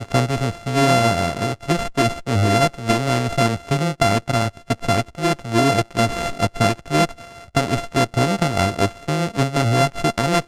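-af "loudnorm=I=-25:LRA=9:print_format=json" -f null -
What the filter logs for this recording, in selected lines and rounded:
"input_i" : "-19.9",
"input_tp" : "-4.8",
"input_lra" : "1.2",
"input_thresh" : "-29.9",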